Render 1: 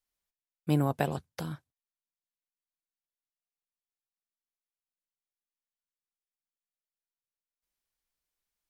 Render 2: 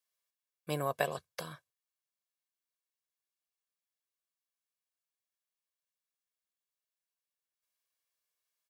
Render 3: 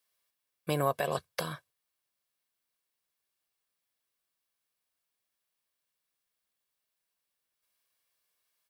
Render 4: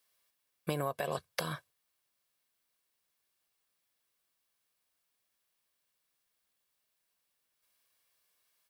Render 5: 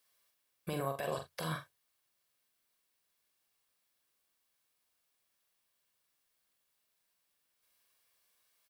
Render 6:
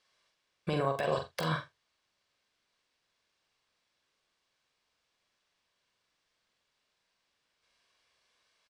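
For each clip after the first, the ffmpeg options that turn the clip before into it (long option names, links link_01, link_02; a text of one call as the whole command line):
ffmpeg -i in.wav -af "highpass=frequency=640:poles=1,aecho=1:1:1.8:0.56" out.wav
ffmpeg -i in.wav -af "equalizer=frequency=6700:width_type=o:width=0.38:gain=-5,alimiter=level_in=0.5dB:limit=-24dB:level=0:latency=1:release=100,volume=-0.5dB,volume=8dB" out.wav
ffmpeg -i in.wav -af "acompressor=threshold=-34dB:ratio=6,volume=3.5dB" out.wav
ffmpeg -i in.wav -af "alimiter=level_in=2dB:limit=-24dB:level=0:latency=1:release=22,volume=-2dB,aecho=1:1:44|80:0.501|0.15" out.wav
ffmpeg -i in.wav -filter_complex "[0:a]acrossover=split=6700[link_01][link_02];[link_02]acrusher=bits=6:mix=0:aa=0.000001[link_03];[link_01][link_03]amix=inputs=2:normalize=0,asplit=2[link_04][link_05];[link_05]adelay=46,volume=-13dB[link_06];[link_04][link_06]amix=inputs=2:normalize=0,volume=6dB" out.wav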